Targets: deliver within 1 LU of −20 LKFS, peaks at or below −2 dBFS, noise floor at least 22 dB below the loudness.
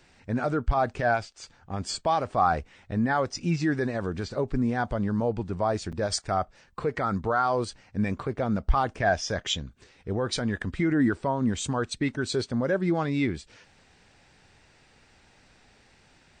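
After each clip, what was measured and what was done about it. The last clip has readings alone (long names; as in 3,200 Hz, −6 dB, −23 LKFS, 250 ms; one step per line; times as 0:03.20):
number of dropouts 1; longest dropout 6.4 ms; integrated loudness −28.0 LKFS; sample peak −11.0 dBFS; target loudness −20.0 LKFS
→ repair the gap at 0:05.92, 6.4 ms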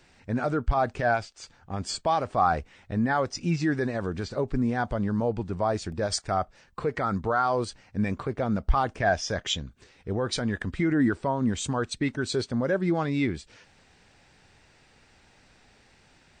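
number of dropouts 0; integrated loudness −28.0 LKFS; sample peak −11.0 dBFS; target loudness −20.0 LKFS
→ level +8 dB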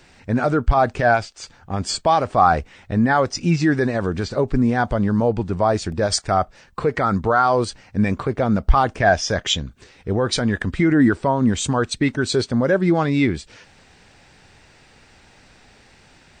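integrated loudness −20.0 LKFS; sample peak −3.0 dBFS; background noise floor −52 dBFS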